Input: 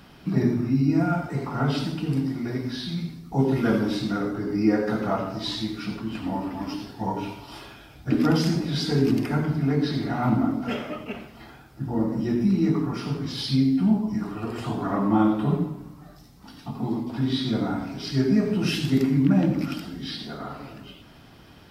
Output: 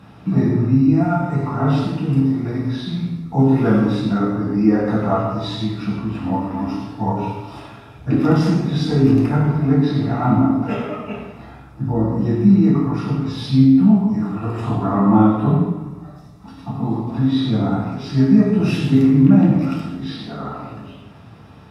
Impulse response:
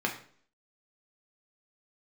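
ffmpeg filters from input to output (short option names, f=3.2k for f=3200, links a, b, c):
-filter_complex "[0:a]bandreject=f=380:w=12[a];[1:a]atrim=start_sample=2205,asetrate=23373,aresample=44100[b];[a][b]afir=irnorm=-1:irlink=0,volume=-6.5dB"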